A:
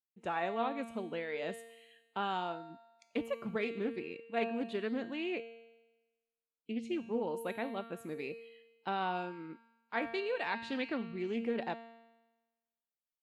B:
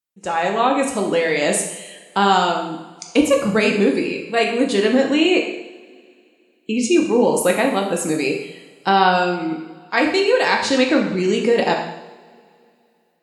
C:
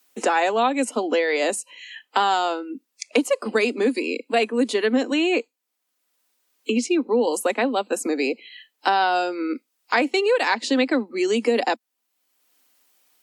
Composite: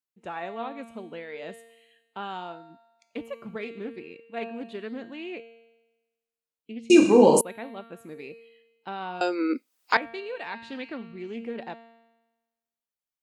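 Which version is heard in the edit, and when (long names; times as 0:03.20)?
A
0:06.90–0:07.41: punch in from B
0:09.21–0:09.97: punch in from C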